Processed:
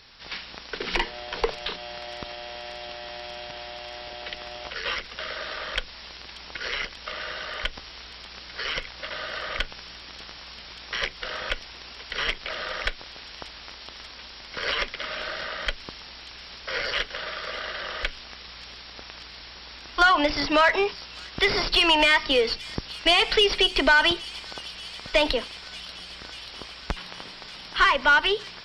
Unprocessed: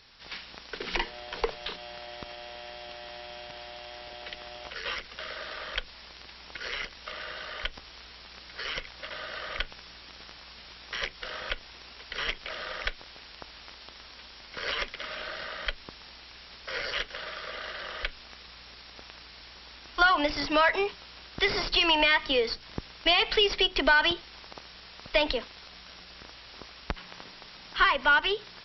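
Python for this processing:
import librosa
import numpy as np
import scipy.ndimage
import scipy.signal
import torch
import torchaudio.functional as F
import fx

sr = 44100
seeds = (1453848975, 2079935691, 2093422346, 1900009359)

y = 10.0 ** (-14.5 / 20.0) * np.tanh(x / 10.0 ** (-14.5 / 20.0))
y = fx.echo_wet_highpass(y, sr, ms=586, feedback_pct=80, hz=5000.0, wet_db=-9.5)
y = F.gain(torch.from_numpy(y), 5.0).numpy()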